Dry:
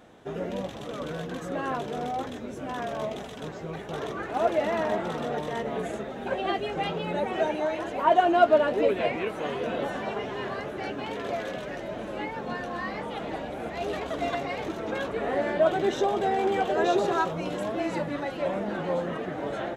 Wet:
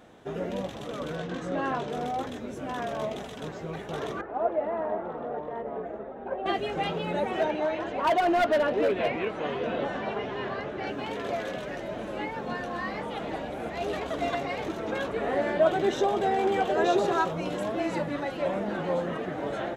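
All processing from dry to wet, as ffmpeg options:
-filter_complex "[0:a]asettb=1/sr,asplit=3[a][b][c];[a]atrim=end=1.164[d];[b]atrim=start=1.16:end=1.9,asetpts=PTS-STARTPTS,afade=t=in:d=0.004:c=qsin,afade=t=out:st=0.736:d=0.004:c=qsin,lowpass=6.5k,asplit=2[e][f];[f]adelay=22,volume=-8dB[g];[e][g]amix=inputs=2:normalize=0,atrim=end_sample=32634[h];[c]atrim=start=1.896[i];[d][h]acrossfade=d=0.004:c1=hsin:c2=qsin[j];[j][i]acrossfade=d=0.004:c1=qsin:c2=hsin,asettb=1/sr,asplit=3[k][l][m];[k]atrim=end=4.214[n];[l]atrim=start=4.21:end=6.46,asetpts=PTS-STARTPTS,afade=t=in:d=0.004:c=qsin,afade=t=out:st=2.246:d=0.004:c=qsin,lowpass=1k,equalizer=f=130:t=o:w=2.3:g=-11[o];[m]atrim=start=6.456[p];[n][o]acrossfade=d=0.004:c1=hsin:c2=qsin[q];[q][p]acrossfade=d=0.004:c1=qsin:c2=hsin,asettb=1/sr,asplit=3[r][s][t];[r]atrim=end=7.414[u];[s]atrim=start=7.41:end=10.87,asetpts=PTS-STARTPTS,afade=t=in:d=0.004:c=qsin,afade=t=out:st=3.456:d=0.004:c=qsin,lowpass=4.7k,asoftclip=type=hard:threshold=-19.5dB[v];[t]atrim=start=10.866[w];[u][v]acrossfade=d=0.004:c1=hsin:c2=qsin[x];[x][w]acrossfade=d=0.004:c1=qsin:c2=hsin"

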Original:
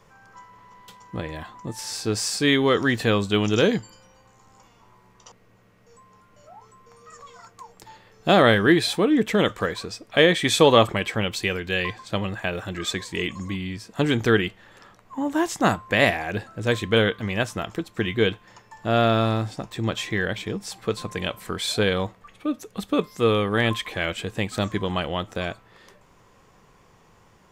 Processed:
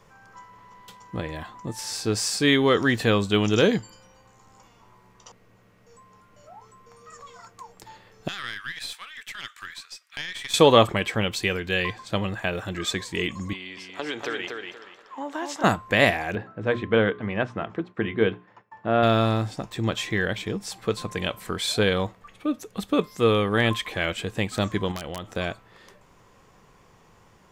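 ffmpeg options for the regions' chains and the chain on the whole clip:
-filter_complex "[0:a]asettb=1/sr,asplit=3[a][b][c];[a]atrim=end=8.284[d];[b]atrim=start=8.28:end=10.54,asetpts=PTS-STARTPTS,afade=t=in:d=0.004:c=qsin,afade=t=out:st=2.256:d=0.004:c=qsin,highpass=f=1.4k:w=0.5412,highpass=f=1.4k:w=1.3066,acompressor=threshold=-31dB:ratio=2:attack=3.2:release=140:knee=1:detection=peak,aeval=exprs='(tanh(10*val(0)+0.7)-tanh(0.7))/10':c=same[e];[c]atrim=start=10.536[f];[d][e]acrossfade=d=0.004:c1=hsin:c2=qsin[g];[g][f]acrossfade=d=0.004:c1=qsin:c2=hsin,asettb=1/sr,asplit=3[h][i][j];[h]atrim=end=13.534[k];[i]atrim=start=13.53:end=15.64,asetpts=PTS-STARTPTS,afade=t=in:d=0.004:c=qsin,afade=t=out:st=2.106:d=0.004:c=qsin,acrossover=split=360 6400:gain=0.0631 1 0.224[l][m][n];[l][m][n]amix=inputs=3:normalize=0,acompressor=threshold=-26dB:ratio=5:attack=3.2:release=140:knee=1:detection=peak,aecho=1:1:238|476|714|952:0.562|0.152|0.041|0.0111,atrim=end_sample=93051[o];[j]atrim=start=15.636[p];[k][o]acrossfade=d=0.004:c1=hsin:c2=qsin[q];[q][p]acrossfade=d=0.004:c1=qsin:c2=hsin,asettb=1/sr,asplit=3[r][s][t];[r]atrim=end=16.354[u];[s]atrim=start=16.35:end=19.03,asetpts=PTS-STARTPTS,afade=t=in:d=0.004:c=qsin,afade=t=out:st=2.676:d=0.004:c=qsin,bandreject=f=60:t=h:w=6,bandreject=f=120:t=h:w=6,bandreject=f=180:t=h:w=6,bandreject=f=240:t=h:w=6,bandreject=f=300:t=h:w=6,bandreject=f=360:t=h:w=6,bandreject=f=420:t=h:w=6,agate=range=-33dB:threshold=-47dB:ratio=3:release=100:detection=peak,highpass=110,lowpass=2k[v];[t]atrim=start=19.026[w];[u][v]acrossfade=d=0.004:c1=hsin:c2=qsin[x];[x][w]acrossfade=d=0.004:c1=qsin:c2=hsin,asettb=1/sr,asplit=3[y][z][aa];[y]atrim=end=24.914[ab];[z]atrim=start=24.91:end=25.31,asetpts=PTS-STARTPTS,afade=t=in:d=0.004:c=qsin,afade=t=out:st=0.396:d=0.004:c=qsin,acompressor=threshold=-29dB:ratio=8:attack=3.2:release=140:knee=1:detection=peak,aeval=exprs='(mod(13.3*val(0)+1,2)-1)/13.3':c=same[ac];[aa]atrim=start=25.306[ad];[ab][ac]acrossfade=d=0.004:c1=hsin:c2=qsin[ae];[ae][ad]acrossfade=d=0.004:c1=qsin:c2=hsin"

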